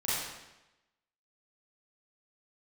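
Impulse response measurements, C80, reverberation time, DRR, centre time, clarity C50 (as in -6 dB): 0.5 dB, 1.0 s, -10.5 dB, 95 ms, -3.0 dB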